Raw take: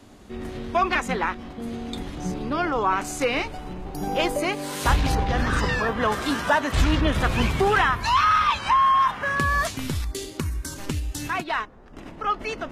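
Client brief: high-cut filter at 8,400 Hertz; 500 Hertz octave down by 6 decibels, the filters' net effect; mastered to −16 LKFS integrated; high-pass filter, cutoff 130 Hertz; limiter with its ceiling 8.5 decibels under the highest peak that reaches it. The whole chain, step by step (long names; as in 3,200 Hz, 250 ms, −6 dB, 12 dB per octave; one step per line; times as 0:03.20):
high-pass filter 130 Hz
low-pass filter 8,400 Hz
parametric band 500 Hz −8 dB
level +13 dB
brickwall limiter −6 dBFS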